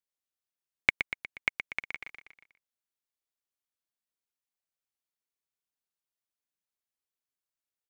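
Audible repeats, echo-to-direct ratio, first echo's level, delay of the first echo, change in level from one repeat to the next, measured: 4, −6.5 dB, −8.0 dB, 120 ms, −5.5 dB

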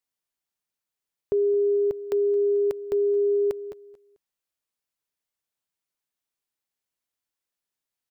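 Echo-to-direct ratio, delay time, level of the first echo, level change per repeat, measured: −19.5 dB, 221 ms, −20.5 dB, −6.0 dB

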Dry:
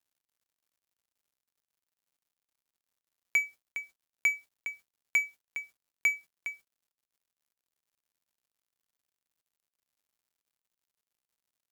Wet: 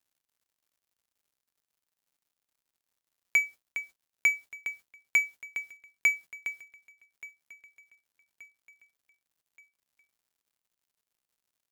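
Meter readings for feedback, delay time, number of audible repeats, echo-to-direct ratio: 48%, 1,177 ms, 3, −20.0 dB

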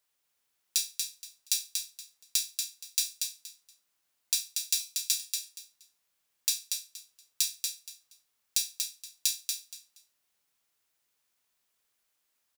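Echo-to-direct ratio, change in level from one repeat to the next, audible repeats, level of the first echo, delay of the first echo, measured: −5.0 dB, −13.0 dB, 3, −5.0 dB, 236 ms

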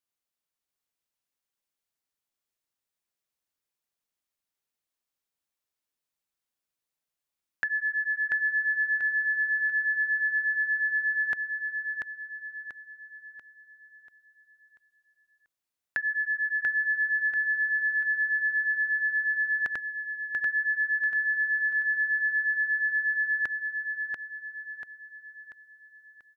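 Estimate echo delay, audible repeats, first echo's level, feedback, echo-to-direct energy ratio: 688 ms, 5, −4.0 dB, 44%, −3.0 dB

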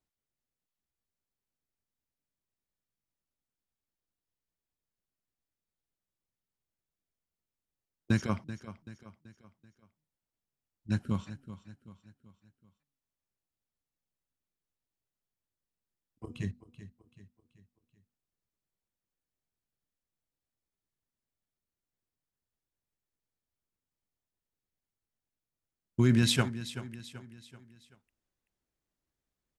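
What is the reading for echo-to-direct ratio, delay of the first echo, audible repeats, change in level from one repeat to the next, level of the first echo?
−13.0 dB, 383 ms, 4, −7.0 dB, −14.0 dB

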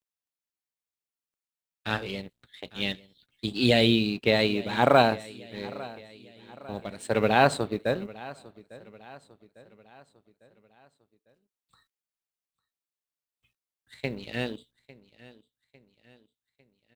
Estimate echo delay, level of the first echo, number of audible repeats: 851 ms, −20.0 dB, 3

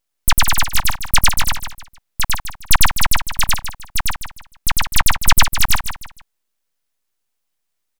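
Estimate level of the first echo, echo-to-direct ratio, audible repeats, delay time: −9.5 dB, −9.0 dB, 3, 154 ms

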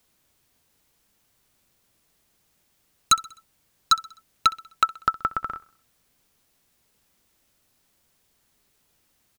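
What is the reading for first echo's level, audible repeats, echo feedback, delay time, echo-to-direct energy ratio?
−20.0 dB, 3, 50%, 64 ms, −19.0 dB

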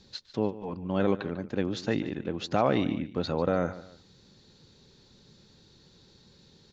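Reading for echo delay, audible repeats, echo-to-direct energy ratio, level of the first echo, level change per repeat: 146 ms, 2, −15.5 dB, −16.0 dB, −9.0 dB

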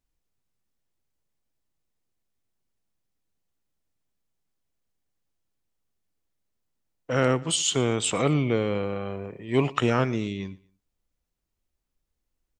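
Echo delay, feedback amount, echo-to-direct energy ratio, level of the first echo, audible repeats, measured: 116 ms, 30%, −21.0 dB, −21.5 dB, 2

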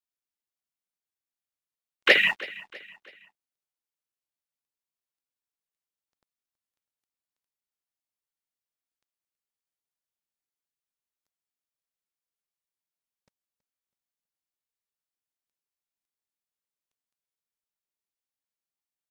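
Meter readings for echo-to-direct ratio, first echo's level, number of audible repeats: −18.0 dB, −19.0 dB, 3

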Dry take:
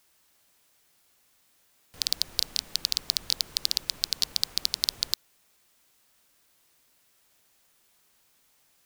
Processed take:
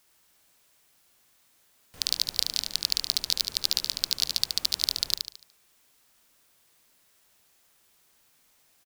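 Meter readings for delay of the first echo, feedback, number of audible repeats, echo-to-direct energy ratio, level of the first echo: 73 ms, 39%, 4, −5.0 dB, −5.5 dB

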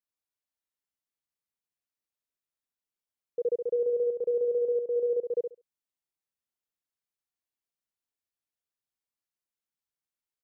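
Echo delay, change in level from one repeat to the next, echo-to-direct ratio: 69 ms, −15.5 dB, −5.0 dB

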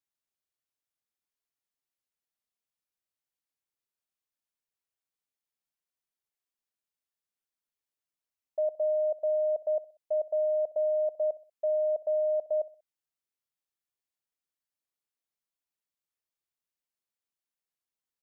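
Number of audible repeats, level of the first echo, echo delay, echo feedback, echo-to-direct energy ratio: 2, −19.0 dB, 63 ms, 39%, −18.5 dB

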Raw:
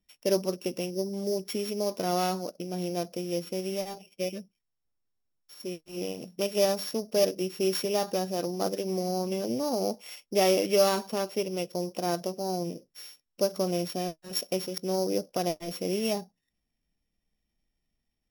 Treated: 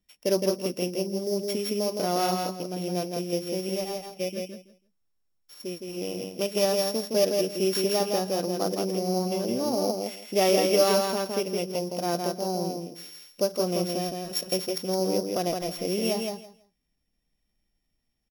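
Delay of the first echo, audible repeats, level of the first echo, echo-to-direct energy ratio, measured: 164 ms, 3, −4.0 dB, −4.0 dB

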